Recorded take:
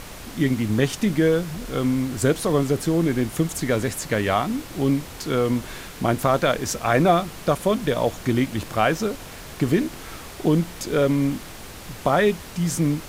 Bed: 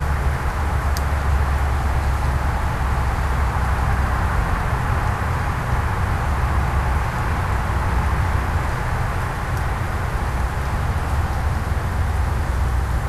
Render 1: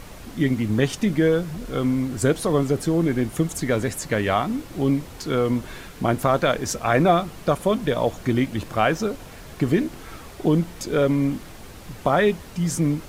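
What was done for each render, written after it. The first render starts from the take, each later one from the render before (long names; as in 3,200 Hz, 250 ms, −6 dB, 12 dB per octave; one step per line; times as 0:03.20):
broadband denoise 6 dB, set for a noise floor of −39 dBFS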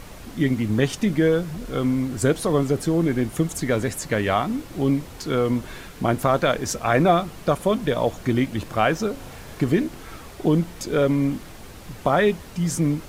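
0:09.13–0:09.64: flutter between parallel walls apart 6.3 metres, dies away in 0.38 s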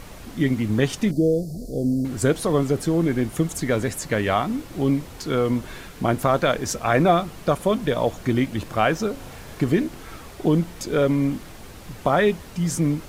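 0:01.11–0:02.05: Chebyshev band-stop filter 680–4,500 Hz, order 4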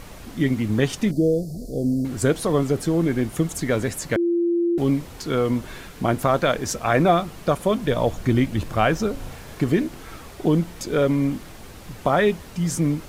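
0:04.16–0:04.78: beep over 343 Hz −17.5 dBFS
0:07.89–0:09.35: low-shelf EQ 110 Hz +9 dB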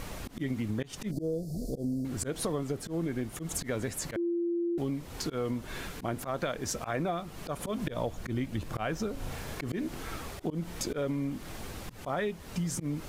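volume swells 174 ms
downward compressor 6 to 1, threshold −30 dBFS, peak gain reduction 16.5 dB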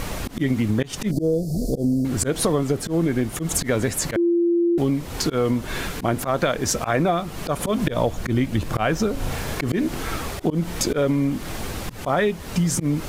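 level +11.5 dB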